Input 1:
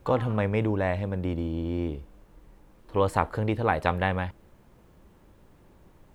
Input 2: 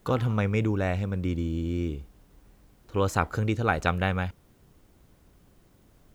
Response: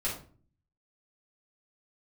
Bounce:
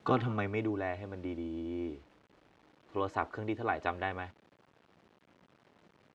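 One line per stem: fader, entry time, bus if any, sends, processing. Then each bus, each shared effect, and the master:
-9.0 dB, 0.00 s, no send, low-pass 5.1 kHz 12 dB/octave
+1.0 dB, 2.7 ms, no send, auto duck -14 dB, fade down 0.90 s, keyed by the first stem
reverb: none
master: word length cut 10-bit, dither none; band-pass 140–3800 Hz

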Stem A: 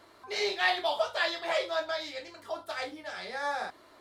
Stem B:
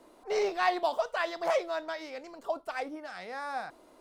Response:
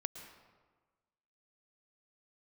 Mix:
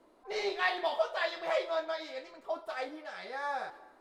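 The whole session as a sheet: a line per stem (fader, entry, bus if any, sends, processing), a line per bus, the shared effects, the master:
-7.5 dB, 0.00 s, send -3 dB, gate -47 dBFS, range -13 dB; steep high-pass 330 Hz 96 dB/octave
-6.0 dB, 0.00 s, no send, none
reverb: on, RT60 1.4 s, pre-delay 105 ms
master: treble shelf 3.4 kHz -7.5 dB

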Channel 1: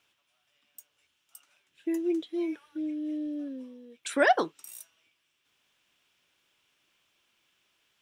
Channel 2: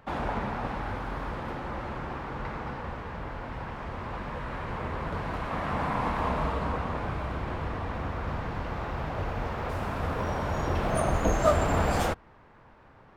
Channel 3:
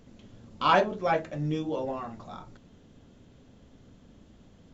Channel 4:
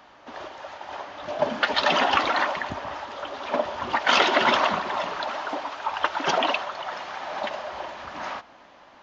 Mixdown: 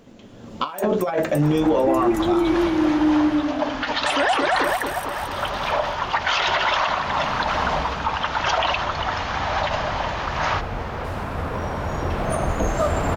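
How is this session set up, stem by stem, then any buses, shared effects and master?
+2.5 dB, 0.00 s, no send, echo send -3.5 dB, none
-7.5 dB, 1.35 s, no send, no echo send, none
+2.0 dB, 0.00 s, no send, no echo send, bass shelf 140 Hz -8.5 dB; compressor with a negative ratio -31 dBFS, ratio -0.5; peaking EQ 620 Hz +4.5 dB 3 oct
0.0 dB, 2.20 s, no send, no echo send, high-pass 660 Hz 12 dB/octave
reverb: none
echo: feedback delay 224 ms, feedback 47%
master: level rider gain up to 11 dB; peak limiter -11 dBFS, peak gain reduction 9.5 dB

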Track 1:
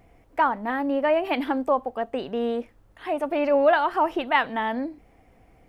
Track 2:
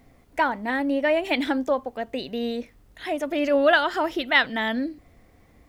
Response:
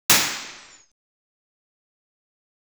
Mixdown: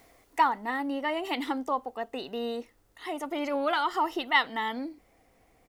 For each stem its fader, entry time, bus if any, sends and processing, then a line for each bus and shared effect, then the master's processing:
-6.0 dB, 0.00 s, no send, none
+2.5 dB, 0.7 ms, no send, high-pass 450 Hz 12 dB/octave; auto duck -12 dB, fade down 0.70 s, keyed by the first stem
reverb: none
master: tone controls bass -5 dB, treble +6 dB

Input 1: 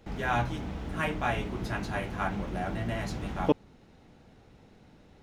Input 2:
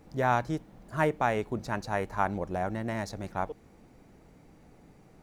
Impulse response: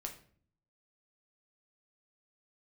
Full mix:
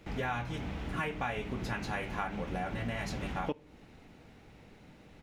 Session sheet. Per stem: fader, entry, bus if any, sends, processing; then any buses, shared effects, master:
-2.5 dB, 0.00 s, send -13 dB, none
-4.5 dB, 0.4 ms, no send, none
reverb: on, RT60 0.50 s, pre-delay 7 ms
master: peaking EQ 2.4 kHz +6 dB 1.1 oct; compression 5:1, threshold -32 dBFS, peak gain reduction 12.5 dB

